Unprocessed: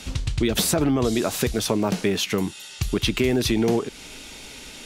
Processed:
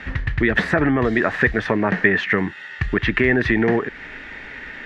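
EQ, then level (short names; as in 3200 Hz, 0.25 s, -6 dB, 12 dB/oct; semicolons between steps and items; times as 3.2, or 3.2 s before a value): synth low-pass 1800 Hz, resonance Q 12; +2.0 dB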